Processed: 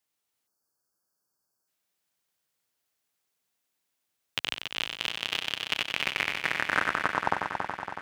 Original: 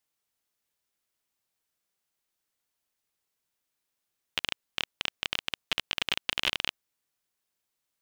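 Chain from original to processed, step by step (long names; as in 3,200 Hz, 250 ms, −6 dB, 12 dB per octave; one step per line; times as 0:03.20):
turntable brake at the end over 2.46 s
high-pass filter 81 Hz
echo machine with several playback heads 93 ms, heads first and third, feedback 73%, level −7 dB
time-frequency box erased 0:00.47–0:01.68, 1,700–4,300 Hz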